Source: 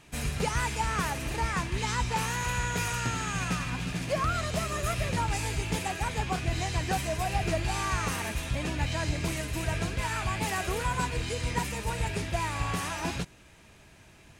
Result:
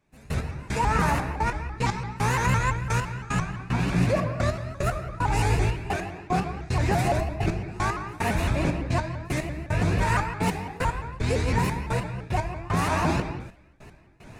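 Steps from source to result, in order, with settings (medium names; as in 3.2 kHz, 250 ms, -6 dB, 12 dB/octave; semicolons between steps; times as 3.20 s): treble shelf 2.1 kHz -10.5 dB; band-stop 3.1 kHz, Q 6.8; in parallel at 0 dB: compressor with a negative ratio -34 dBFS; on the sum: trance gate "...x...xxxxx..x" 150 bpm -24 dB; on a send at -3.5 dB: reverberation, pre-delay 3 ms; on the sum: vibrato with a chosen wave saw up 5.9 Hz, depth 160 cents; trim +3 dB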